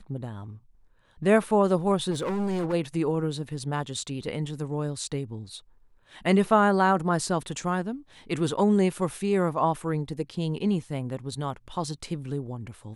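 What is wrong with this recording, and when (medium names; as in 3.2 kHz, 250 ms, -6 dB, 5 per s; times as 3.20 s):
2.10–2.74 s: clipped -25 dBFS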